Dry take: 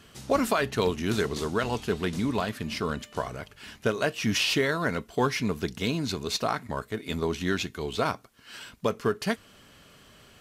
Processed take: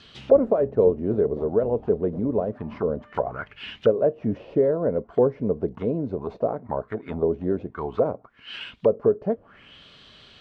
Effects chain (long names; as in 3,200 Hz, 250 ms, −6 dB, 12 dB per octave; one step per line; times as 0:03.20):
envelope-controlled low-pass 530–4,300 Hz down, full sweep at −26 dBFS